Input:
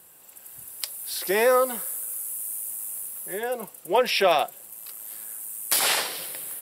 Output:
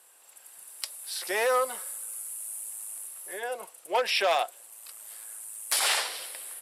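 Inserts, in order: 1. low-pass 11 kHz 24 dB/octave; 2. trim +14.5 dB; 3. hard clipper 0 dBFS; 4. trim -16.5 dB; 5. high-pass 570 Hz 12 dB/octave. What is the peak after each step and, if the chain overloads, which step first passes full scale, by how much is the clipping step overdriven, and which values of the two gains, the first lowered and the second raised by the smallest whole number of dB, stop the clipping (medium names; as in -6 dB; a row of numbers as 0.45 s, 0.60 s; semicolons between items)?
-8.5 dBFS, +6.0 dBFS, 0.0 dBFS, -16.5 dBFS, -14.0 dBFS; step 2, 6.0 dB; step 2 +8.5 dB, step 4 -10.5 dB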